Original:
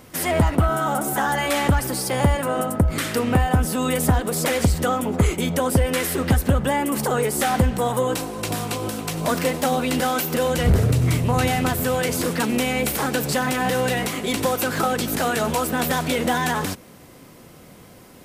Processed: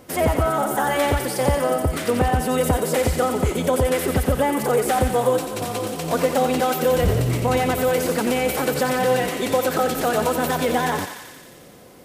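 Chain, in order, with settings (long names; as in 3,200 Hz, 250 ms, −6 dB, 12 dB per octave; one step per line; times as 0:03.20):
parametric band 510 Hz +7 dB 1.6 octaves
phase-vocoder stretch with locked phases 0.66×
on a send: feedback echo with a high-pass in the loop 89 ms, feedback 76%, high-pass 940 Hz, level −6 dB
on the sum: level −2.5 dB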